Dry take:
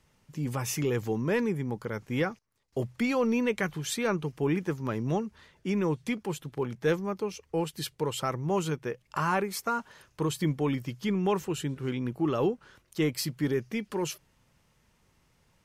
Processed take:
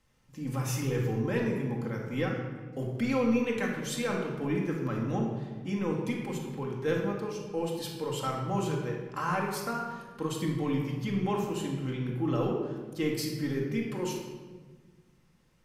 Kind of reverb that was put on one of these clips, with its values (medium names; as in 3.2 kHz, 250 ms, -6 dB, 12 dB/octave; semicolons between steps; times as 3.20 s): simulated room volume 1300 m³, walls mixed, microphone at 2.1 m; trim -6 dB